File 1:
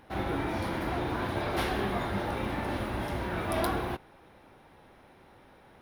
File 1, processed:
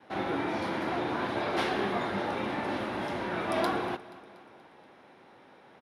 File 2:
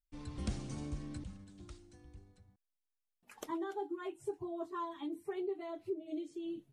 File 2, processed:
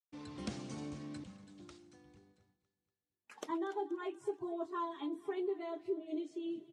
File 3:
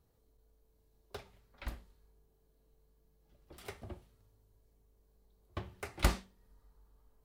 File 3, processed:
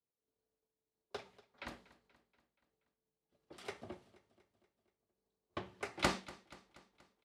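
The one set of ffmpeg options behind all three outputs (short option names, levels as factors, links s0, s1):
-filter_complex "[0:a]acontrast=37,agate=range=0.0224:threshold=0.00224:ratio=3:detection=peak,highpass=190,lowpass=7200,asplit=2[s0][s1];[s1]aecho=0:1:239|478|717|956|1195:0.106|0.0593|0.0332|0.0186|0.0104[s2];[s0][s2]amix=inputs=2:normalize=0,volume=0.631"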